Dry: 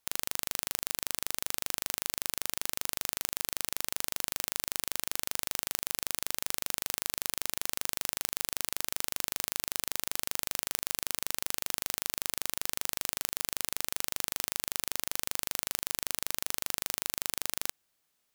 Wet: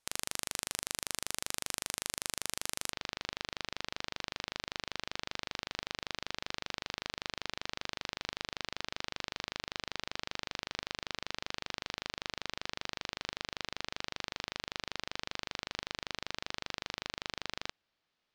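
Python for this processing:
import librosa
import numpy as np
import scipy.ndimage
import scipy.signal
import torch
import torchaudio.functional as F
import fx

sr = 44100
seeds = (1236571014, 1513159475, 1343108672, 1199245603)

y = fx.lowpass(x, sr, hz=fx.steps((0.0, 11000.0), (2.92, 4700.0)), slope=24)
y = y * librosa.db_to_amplitude(-1.0)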